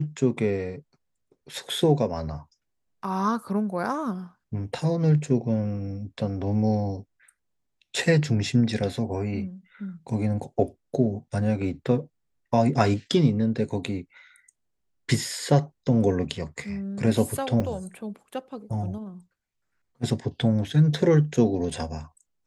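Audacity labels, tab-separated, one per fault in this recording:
17.600000	17.600000	gap 3 ms

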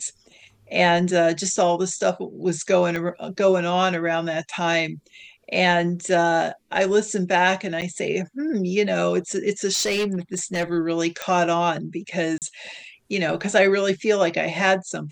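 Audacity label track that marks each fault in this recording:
2.960000	2.960000	pop -15 dBFS
7.810000	7.820000	gap 8.9 ms
9.730000	10.640000	clipped -19 dBFS
11.220000	11.220000	pop -13 dBFS
12.380000	12.420000	gap 38 ms

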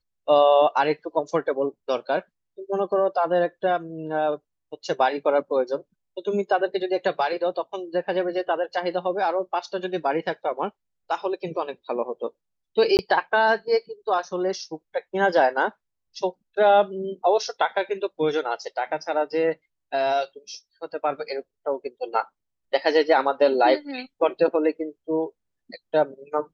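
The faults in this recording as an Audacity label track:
12.970000	12.990000	gap 19 ms

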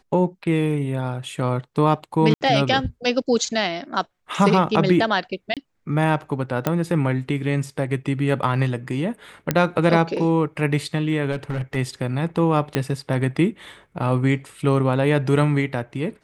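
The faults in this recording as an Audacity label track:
2.340000	2.410000	gap 69 ms
5.540000	5.570000	gap 27 ms
6.670000	6.670000	pop -7 dBFS
9.510000	9.510000	pop -5 dBFS
11.320000	11.770000	clipped -20.5 dBFS
12.750000	12.750000	pop -6 dBFS

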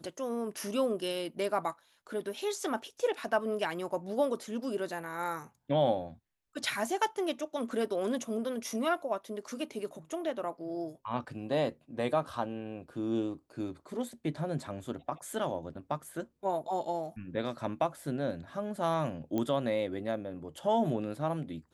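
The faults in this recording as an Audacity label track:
19.380000	19.380000	pop -20 dBFS

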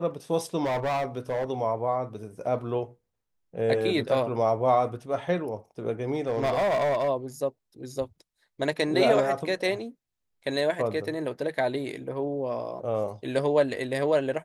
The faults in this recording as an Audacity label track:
0.640000	1.510000	clipped -24 dBFS
6.150000	7.090000	clipped -21.5 dBFS

